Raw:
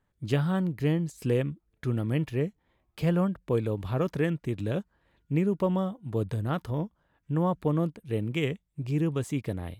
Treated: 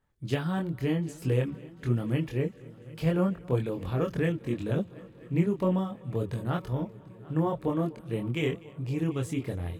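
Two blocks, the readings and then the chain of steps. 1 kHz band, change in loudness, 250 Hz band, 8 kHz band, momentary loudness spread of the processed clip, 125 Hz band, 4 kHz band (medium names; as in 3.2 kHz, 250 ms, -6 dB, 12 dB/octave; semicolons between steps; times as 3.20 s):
-1.0 dB, -1.0 dB, -1.0 dB, no reading, 7 LU, -1.0 dB, -0.5 dB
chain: multi-head delay 247 ms, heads first and third, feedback 69%, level -23 dB; chorus voices 4, 0.81 Hz, delay 24 ms, depth 1.9 ms; trim +2.5 dB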